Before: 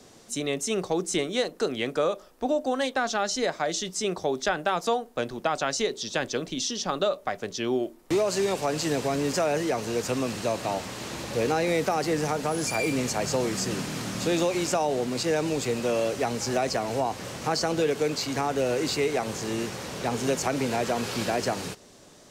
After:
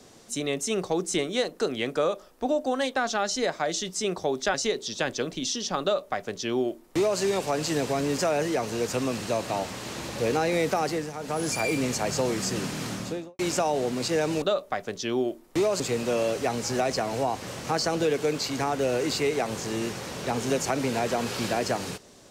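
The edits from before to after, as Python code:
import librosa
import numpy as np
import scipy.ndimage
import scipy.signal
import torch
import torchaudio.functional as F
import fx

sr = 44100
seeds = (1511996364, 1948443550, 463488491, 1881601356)

y = fx.studio_fade_out(x, sr, start_s=14.03, length_s=0.51)
y = fx.edit(y, sr, fx.cut(start_s=4.54, length_s=1.15),
    fx.duplicate(start_s=6.97, length_s=1.38, to_s=15.57),
    fx.fade_down_up(start_s=12.0, length_s=0.56, db=-11.0, fade_s=0.27), tone=tone)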